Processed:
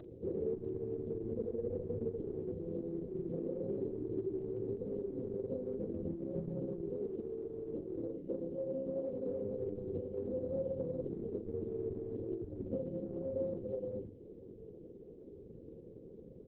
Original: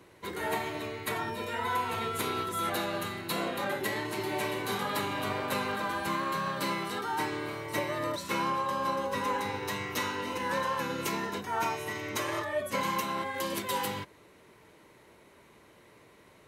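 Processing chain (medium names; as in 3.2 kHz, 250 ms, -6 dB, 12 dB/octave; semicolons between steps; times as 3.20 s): FFT band-reject 540–5000 Hz; compression 12:1, threshold -40 dBFS, peak gain reduction 10 dB; 7.00–9.28 s: high-pass 200 Hz 12 dB/octave; upward compressor, threshold -52 dBFS; peaking EQ 11 kHz +14.5 dB 0.38 oct; hum notches 50/100/150/200/250/300 Hz; doubling 43 ms -11 dB; feedback echo behind a high-pass 116 ms, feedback 65%, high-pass 3 kHz, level -17 dB; dynamic bell 5.1 kHz, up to -3 dB, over -59 dBFS, Q 2.6; trim +7.5 dB; Opus 6 kbps 48 kHz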